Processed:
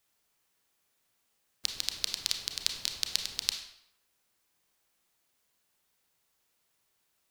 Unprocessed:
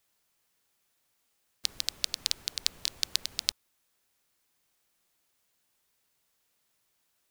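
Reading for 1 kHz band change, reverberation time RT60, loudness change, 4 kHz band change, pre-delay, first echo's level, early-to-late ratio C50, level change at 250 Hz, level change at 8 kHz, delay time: +0.5 dB, 0.75 s, -1.0 dB, -0.5 dB, 28 ms, no echo, 6.0 dB, 0.0 dB, -1.0 dB, no echo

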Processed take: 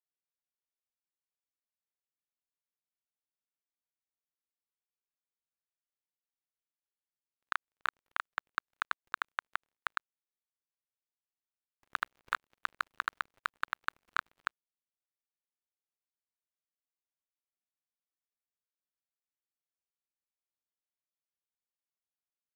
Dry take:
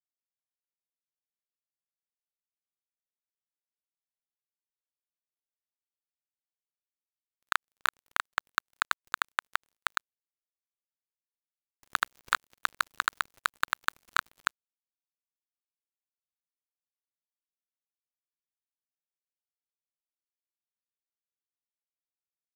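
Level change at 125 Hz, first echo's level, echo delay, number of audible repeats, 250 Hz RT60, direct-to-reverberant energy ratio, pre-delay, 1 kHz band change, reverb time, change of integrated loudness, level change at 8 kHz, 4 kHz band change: no reading, no echo, no echo, no echo, no reverb, no reverb, no reverb, -5.5 dB, no reverb, -6.5 dB, -16.5 dB, -10.5 dB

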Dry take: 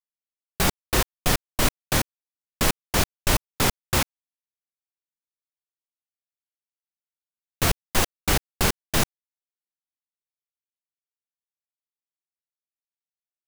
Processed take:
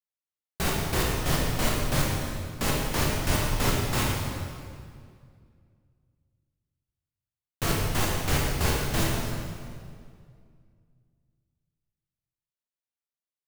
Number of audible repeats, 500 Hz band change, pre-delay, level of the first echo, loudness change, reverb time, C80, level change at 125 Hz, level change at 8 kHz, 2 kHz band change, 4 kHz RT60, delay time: no echo, -1.0 dB, 13 ms, no echo, -3.0 dB, 2.1 s, 1.0 dB, +2.0 dB, -4.5 dB, -3.0 dB, 1.7 s, no echo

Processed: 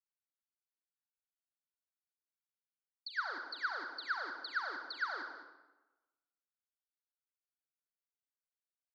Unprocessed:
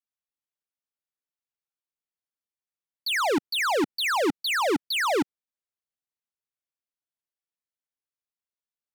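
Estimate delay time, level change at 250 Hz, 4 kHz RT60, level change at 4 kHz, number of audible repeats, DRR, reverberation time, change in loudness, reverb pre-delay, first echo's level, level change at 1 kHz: 209 ms, -30.5 dB, 0.75 s, -17.5 dB, 1, 3.5 dB, 1.1 s, -14.5 dB, 36 ms, -12.5 dB, -13.5 dB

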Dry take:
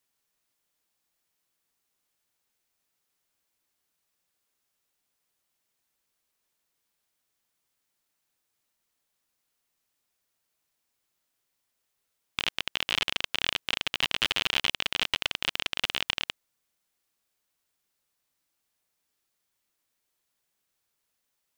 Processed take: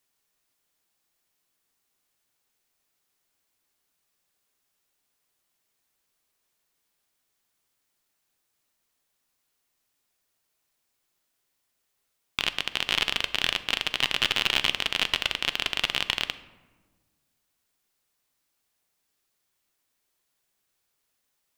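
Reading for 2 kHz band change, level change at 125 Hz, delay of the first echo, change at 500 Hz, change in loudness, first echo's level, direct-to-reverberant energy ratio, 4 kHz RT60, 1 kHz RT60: +2.5 dB, +2.5 dB, no echo, +3.0 dB, +2.5 dB, no echo, 11.0 dB, 0.70 s, 1.3 s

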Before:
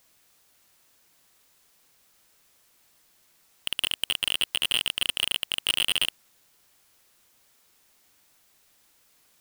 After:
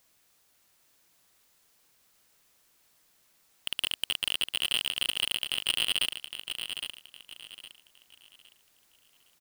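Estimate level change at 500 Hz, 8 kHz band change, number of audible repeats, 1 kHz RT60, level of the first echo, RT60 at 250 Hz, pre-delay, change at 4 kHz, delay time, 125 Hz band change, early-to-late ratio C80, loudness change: -3.5 dB, -3.0 dB, 3, no reverb, -8.0 dB, no reverb, no reverb, -2.5 dB, 812 ms, -3.5 dB, no reverb, -4.0 dB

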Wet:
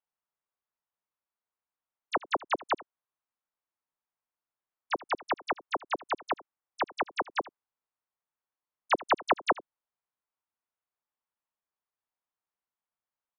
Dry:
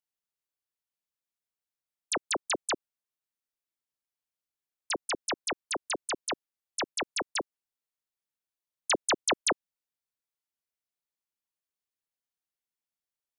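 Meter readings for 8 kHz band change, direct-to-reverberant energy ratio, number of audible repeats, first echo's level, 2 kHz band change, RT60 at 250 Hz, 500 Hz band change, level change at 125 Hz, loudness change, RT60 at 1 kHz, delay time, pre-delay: under -20 dB, no reverb, 1, -20.5 dB, 0.0 dB, no reverb, +1.5 dB, -2.0 dB, -0.5 dB, no reverb, 80 ms, no reverb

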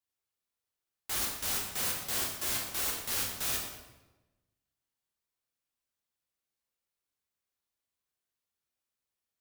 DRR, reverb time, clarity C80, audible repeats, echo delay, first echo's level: -2.5 dB, 1.1 s, 5.5 dB, no echo, no echo, no echo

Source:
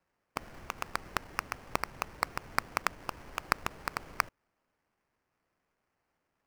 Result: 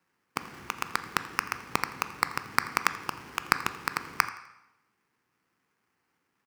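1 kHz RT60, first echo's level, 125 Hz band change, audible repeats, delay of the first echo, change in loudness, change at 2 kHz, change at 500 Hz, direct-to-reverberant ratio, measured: 0.90 s, -19.5 dB, +2.5 dB, 1, 84 ms, +5.5 dB, +6.0 dB, 0.0 dB, 10.5 dB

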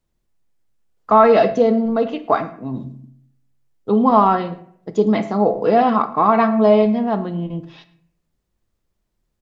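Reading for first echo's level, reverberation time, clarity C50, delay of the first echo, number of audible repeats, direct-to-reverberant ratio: -22.5 dB, 0.70 s, 13.5 dB, 110 ms, 1, 10.5 dB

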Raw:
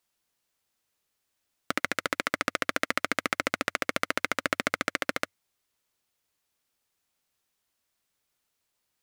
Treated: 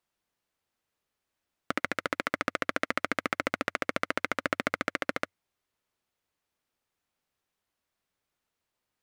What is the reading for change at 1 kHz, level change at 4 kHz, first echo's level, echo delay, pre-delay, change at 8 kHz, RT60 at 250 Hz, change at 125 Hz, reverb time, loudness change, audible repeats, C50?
-1.0 dB, -5.0 dB, no echo, no echo, no reverb, -8.0 dB, no reverb, 0.0 dB, no reverb, -2.0 dB, no echo, no reverb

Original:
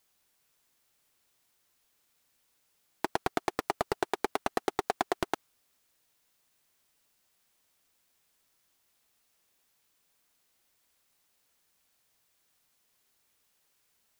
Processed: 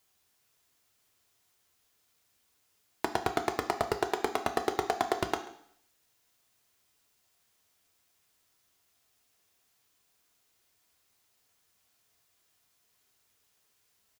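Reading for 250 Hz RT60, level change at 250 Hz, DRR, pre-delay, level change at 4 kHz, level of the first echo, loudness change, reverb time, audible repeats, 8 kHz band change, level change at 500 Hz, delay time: 0.65 s, +1.0 dB, 6.0 dB, 3 ms, +1.5 dB, -20.0 dB, +1.5 dB, 0.65 s, 1, +1.5 dB, +2.0 dB, 136 ms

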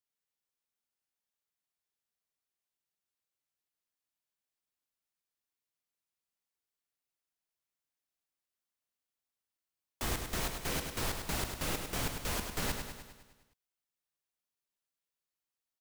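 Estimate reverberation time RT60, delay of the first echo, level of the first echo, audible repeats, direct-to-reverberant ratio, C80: no reverb, 102 ms, -6.5 dB, 7, no reverb, no reverb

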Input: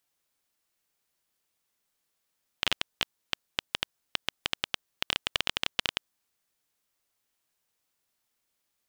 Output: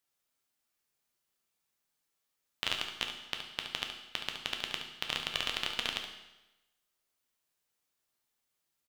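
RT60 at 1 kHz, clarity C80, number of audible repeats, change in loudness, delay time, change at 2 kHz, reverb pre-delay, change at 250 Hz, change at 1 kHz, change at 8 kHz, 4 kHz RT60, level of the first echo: 1.0 s, 8.5 dB, 1, -3.5 dB, 71 ms, -3.5 dB, 8 ms, -3.5 dB, -3.0 dB, -3.0 dB, 0.95 s, -9.0 dB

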